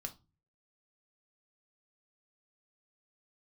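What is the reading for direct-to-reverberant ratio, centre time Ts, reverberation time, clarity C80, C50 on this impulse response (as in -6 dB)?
4.5 dB, 6 ms, 0.30 s, 25.5 dB, 17.0 dB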